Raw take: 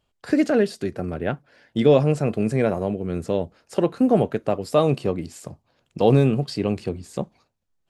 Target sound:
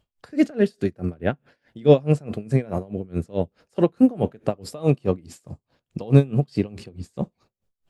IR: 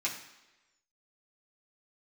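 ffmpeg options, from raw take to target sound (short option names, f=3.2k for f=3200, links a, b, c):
-filter_complex "[0:a]lowshelf=f=240:g=6.5,asplit=2[a][b];[1:a]atrim=start_sample=2205,asetrate=61740,aresample=44100[c];[b][c]afir=irnorm=-1:irlink=0,volume=-22dB[d];[a][d]amix=inputs=2:normalize=0,aeval=exprs='val(0)*pow(10,-26*(0.5-0.5*cos(2*PI*4.7*n/s))/20)':c=same,volume=2dB"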